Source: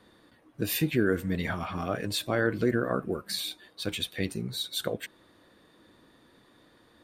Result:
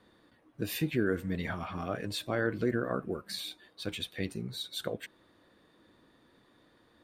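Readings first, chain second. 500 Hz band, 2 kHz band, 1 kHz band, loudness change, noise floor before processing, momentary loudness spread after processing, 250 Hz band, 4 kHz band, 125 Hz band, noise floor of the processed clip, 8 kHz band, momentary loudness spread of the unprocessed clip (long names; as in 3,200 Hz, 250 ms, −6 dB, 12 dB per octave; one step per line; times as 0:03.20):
−4.0 dB, −4.5 dB, −4.0 dB, −4.5 dB, −62 dBFS, 9 LU, −4.0 dB, −5.5 dB, −4.0 dB, −66 dBFS, −7.5 dB, 9 LU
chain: high-shelf EQ 6,200 Hz −5.5 dB
level −4 dB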